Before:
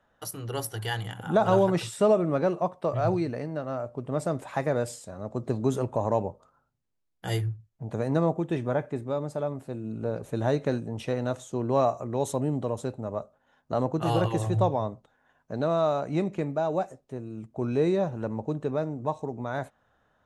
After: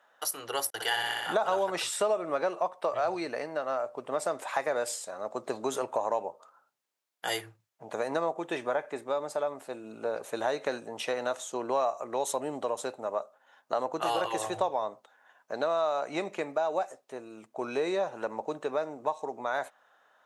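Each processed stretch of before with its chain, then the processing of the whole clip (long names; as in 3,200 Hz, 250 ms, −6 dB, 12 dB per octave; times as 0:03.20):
0:00.70–0:01.34: noise gate −38 dBFS, range −46 dB + flutter between parallel walls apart 10.4 metres, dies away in 1.3 s
whole clip: high-pass filter 650 Hz 12 dB per octave; downward compressor 3 to 1, threshold −33 dBFS; level +6.5 dB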